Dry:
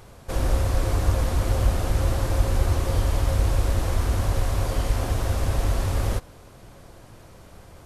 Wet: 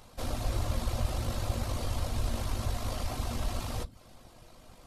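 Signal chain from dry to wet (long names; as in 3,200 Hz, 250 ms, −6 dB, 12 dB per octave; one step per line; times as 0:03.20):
in parallel at −3 dB: soft clipping −17.5 dBFS, distortion −14 dB
on the sum: tuned comb filter 240 Hz, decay 1.4 s, mix 60%
on a send at −3 dB: convolution reverb RT60 0.45 s, pre-delay 3 ms
on the sum: reverb reduction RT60 0.53 s
low-shelf EQ 250 Hz −6 dB
time stretch by overlap-add 0.62×, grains 39 ms
graphic EQ with 15 bands 400 Hz −5 dB, 1,600 Hz −4 dB, 4,000 Hz +3 dB
level −1 dB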